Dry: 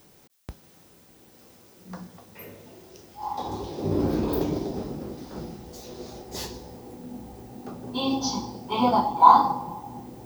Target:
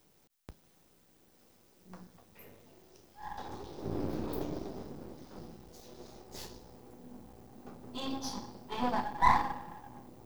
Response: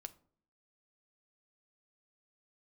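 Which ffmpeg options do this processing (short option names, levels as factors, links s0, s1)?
-af "aeval=exprs='if(lt(val(0),0),0.251*val(0),val(0))':c=same,volume=0.398"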